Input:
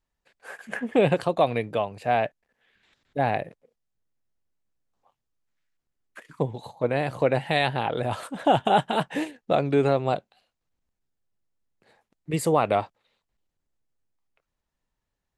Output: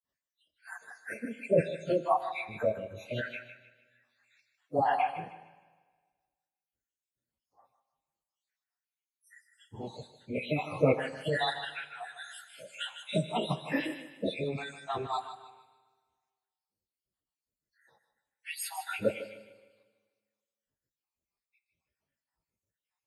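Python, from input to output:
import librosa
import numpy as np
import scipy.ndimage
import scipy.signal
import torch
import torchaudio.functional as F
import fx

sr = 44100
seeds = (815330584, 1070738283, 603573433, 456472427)

p1 = fx.spec_dropout(x, sr, seeds[0], share_pct=74)
p2 = scipy.signal.sosfilt(scipy.signal.butter(2, 76.0, 'highpass', fs=sr, output='sos'), p1)
p3 = fx.high_shelf(p2, sr, hz=4400.0, db=2.5)
p4 = fx.stretch_vocoder_free(p3, sr, factor=1.5)
p5 = p4 + fx.echo_thinned(p4, sr, ms=153, feedback_pct=36, hz=600.0, wet_db=-10, dry=0)
p6 = fx.rev_schroeder(p5, sr, rt60_s=1.5, comb_ms=33, drr_db=14.5)
y = F.gain(torch.from_numpy(p6), 2.0).numpy()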